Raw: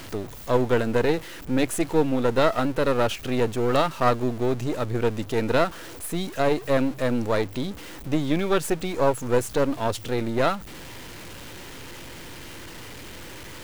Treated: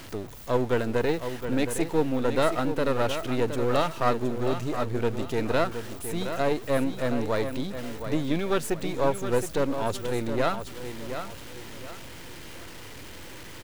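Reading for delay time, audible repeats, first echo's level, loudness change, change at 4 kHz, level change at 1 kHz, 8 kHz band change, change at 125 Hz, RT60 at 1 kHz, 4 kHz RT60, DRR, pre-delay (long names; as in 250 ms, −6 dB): 718 ms, 3, −9.0 dB, −3.5 dB, −3.0 dB, −3.0 dB, −3.0 dB, −3.0 dB, no reverb audible, no reverb audible, no reverb audible, no reverb audible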